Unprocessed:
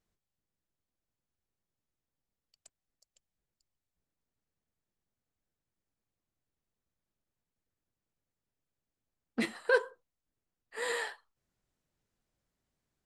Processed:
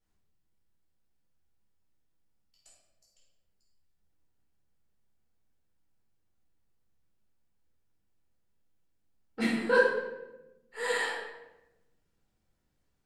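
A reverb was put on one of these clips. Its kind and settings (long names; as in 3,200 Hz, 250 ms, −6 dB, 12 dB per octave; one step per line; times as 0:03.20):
rectangular room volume 420 cubic metres, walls mixed, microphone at 4.3 metres
level −6.5 dB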